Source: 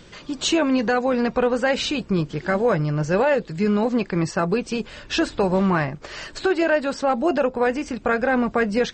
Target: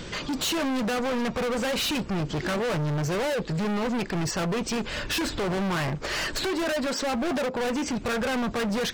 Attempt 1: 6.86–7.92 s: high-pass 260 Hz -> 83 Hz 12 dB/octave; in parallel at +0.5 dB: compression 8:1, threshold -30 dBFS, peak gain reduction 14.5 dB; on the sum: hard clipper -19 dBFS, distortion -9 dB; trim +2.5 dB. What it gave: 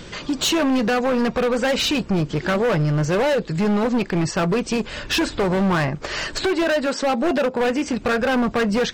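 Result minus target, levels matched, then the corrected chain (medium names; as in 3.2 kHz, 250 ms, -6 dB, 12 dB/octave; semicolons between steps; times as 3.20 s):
hard clipper: distortion -5 dB
6.86–7.92 s: high-pass 260 Hz -> 83 Hz 12 dB/octave; in parallel at +0.5 dB: compression 8:1, threshold -30 dBFS, peak gain reduction 14.5 dB; on the sum: hard clipper -28 dBFS, distortion -4 dB; trim +2.5 dB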